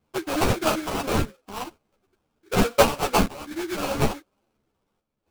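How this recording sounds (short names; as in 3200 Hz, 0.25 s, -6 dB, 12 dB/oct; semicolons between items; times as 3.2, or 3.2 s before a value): phasing stages 8, 0.77 Hz, lowest notch 710–1500 Hz; aliases and images of a low sample rate 1900 Hz, jitter 20%; chopped level 0.57 Hz, depth 60%, duty 85%; a shimmering, thickened sound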